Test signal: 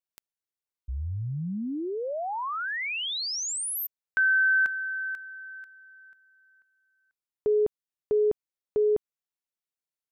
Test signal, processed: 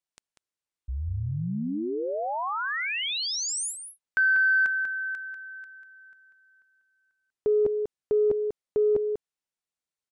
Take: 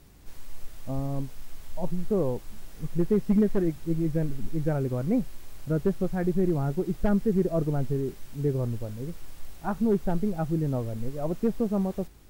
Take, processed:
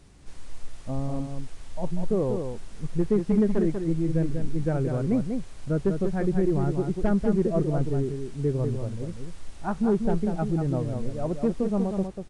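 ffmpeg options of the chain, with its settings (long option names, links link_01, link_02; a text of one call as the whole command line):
ffmpeg -i in.wav -filter_complex "[0:a]asplit=2[link_01][link_02];[link_02]adelay=192.4,volume=-6dB,highshelf=frequency=4000:gain=-4.33[link_03];[link_01][link_03]amix=inputs=2:normalize=0,aresample=22050,aresample=44100,acontrast=61,volume=-5.5dB" out.wav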